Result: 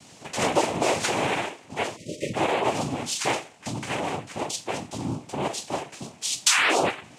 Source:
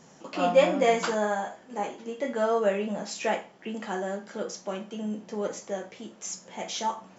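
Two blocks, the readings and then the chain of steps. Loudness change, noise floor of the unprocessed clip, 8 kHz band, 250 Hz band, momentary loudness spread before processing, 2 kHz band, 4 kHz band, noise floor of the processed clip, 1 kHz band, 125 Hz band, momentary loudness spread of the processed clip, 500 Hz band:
+3.0 dB, -54 dBFS, n/a, +1.5 dB, 14 LU, +7.5 dB, +10.0 dB, -50 dBFS, +3.5 dB, +7.5 dB, 12 LU, -2.0 dB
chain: painted sound fall, 6.46–6.88, 300–3600 Hz -18 dBFS; noise vocoder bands 4; high shelf 2300 Hz +9.5 dB; compressor 3:1, threshold -22 dBFS, peak gain reduction 10 dB; spectral delete 1.97–2.34, 640–1800 Hz; gain +2 dB

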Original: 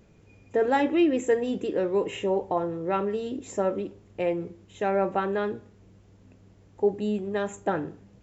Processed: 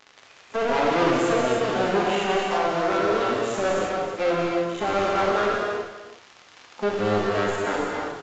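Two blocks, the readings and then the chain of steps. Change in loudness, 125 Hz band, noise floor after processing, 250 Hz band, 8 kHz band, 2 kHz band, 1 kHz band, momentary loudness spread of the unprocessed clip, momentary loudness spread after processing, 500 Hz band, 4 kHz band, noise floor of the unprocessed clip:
+3.5 dB, +4.5 dB, -52 dBFS, +0.5 dB, n/a, +9.0 dB, +7.0 dB, 10 LU, 7 LU, +3.5 dB, +11.0 dB, -56 dBFS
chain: cycle switcher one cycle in 2, muted; spectral noise reduction 16 dB; bell 1300 Hz +2.5 dB 0.58 oct; harmonic-percussive split percussive -16 dB; high shelf 4000 Hz +10 dB; crackle 95/s -41 dBFS; overdrive pedal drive 28 dB, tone 2400 Hz, clips at -10.5 dBFS; on a send: echo 0.321 s -13.5 dB; on the sum: non-linear reverb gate 0.35 s flat, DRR -2 dB; downsampling 16000 Hz; gain -5 dB

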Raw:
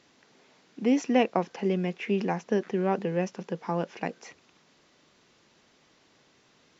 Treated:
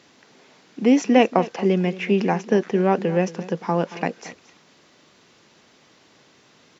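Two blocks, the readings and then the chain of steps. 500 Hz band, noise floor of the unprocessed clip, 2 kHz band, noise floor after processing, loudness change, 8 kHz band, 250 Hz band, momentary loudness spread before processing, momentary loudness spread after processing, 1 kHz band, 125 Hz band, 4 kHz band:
+7.5 dB, -64 dBFS, +7.5 dB, -56 dBFS, +7.5 dB, n/a, +7.5 dB, 11 LU, 12 LU, +7.5 dB, +7.5 dB, +7.5 dB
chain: HPF 70 Hz; echo 0.228 s -17 dB; gain +7.5 dB

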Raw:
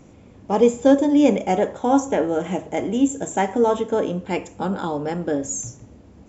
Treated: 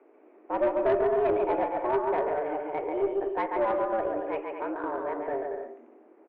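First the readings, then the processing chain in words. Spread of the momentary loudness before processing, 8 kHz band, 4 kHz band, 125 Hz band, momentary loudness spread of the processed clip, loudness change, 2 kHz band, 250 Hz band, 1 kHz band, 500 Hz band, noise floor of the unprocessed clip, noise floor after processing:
10 LU, n/a, under -15 dB, -18.5 dB, 9 LU, -7.5 dB, -5.5 dB, -15.0 dB, -4.5 dB, -5.5 dB, -48 dBFS, -57 dBFS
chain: mistuned SSB +120 Hz 180–2200 Hz; bouncing-ball echo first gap 0.14 s, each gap 0.65×, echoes 5; tube stage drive 10 dB, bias 0.3; gain -7.5 dB

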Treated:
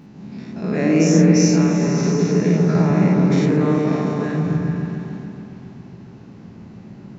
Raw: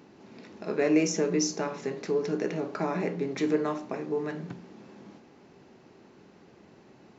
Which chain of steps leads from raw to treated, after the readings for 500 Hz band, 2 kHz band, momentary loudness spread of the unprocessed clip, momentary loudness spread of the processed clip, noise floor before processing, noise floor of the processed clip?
+7.5 dB, +8.0 dB, 16 LU, 19 LU, -56 dBFS, -41 dBFS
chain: spectral dilation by 0.12 s; resonant low shelf 270 Hz +10.5 dB, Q 1.5; repeats that get brighter 0.138 s, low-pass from 750 Hz, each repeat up 1 oct, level 0 dB

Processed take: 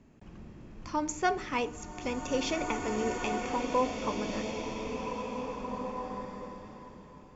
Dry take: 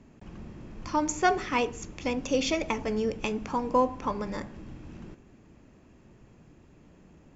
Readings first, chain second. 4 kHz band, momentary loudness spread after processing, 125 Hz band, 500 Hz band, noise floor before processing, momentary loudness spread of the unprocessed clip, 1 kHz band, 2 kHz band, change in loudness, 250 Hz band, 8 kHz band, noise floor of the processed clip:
-2.5 dB, 19 LU, -2.5 dB, -2.5 dB, -57 dBFS, 20 LU, -2.5 dB, -2.5 dB, -4.5 dB, -2.5 dB, n/a, -53 dBFS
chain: bloom reverb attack 2 s, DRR 2.5 dB; gain -4.5 dB

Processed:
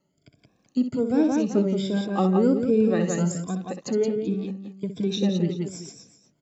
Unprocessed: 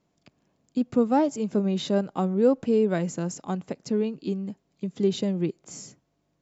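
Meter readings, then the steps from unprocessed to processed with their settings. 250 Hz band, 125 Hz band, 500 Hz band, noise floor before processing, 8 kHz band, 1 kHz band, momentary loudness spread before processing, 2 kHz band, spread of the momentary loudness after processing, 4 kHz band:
+3.0 dB, +3.5 dB, +0.5 dB, -73 dBFS, n/a, -1.5 dB, 13 LU, +2.0 dB, 12 LU, +2.0 dB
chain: moving spectral ripple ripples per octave 1.7, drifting +1.3 Hz, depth 17 dB; tapped delay 64/173/384 ms -9/-5/-15.5 dB; rotary speaker horn 1.2 Hz, later 8 Hz, at 4.11

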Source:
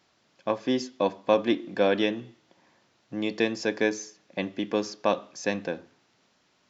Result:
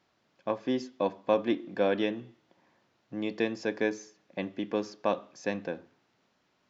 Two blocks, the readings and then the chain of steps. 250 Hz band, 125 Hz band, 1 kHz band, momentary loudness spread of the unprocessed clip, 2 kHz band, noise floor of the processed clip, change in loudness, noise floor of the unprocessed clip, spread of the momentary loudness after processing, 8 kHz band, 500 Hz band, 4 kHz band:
-3.5 dB, -3.5 dB, -4.0 dB, 13 LU, -5.5 dB, -73 dBFS, -4.0 dB, -68 dBFS, 13 LU, n/a, -3.5 dB, -7.5 dB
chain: high shelf 4100 Hz -9.5 dB; gain -3.5 dB

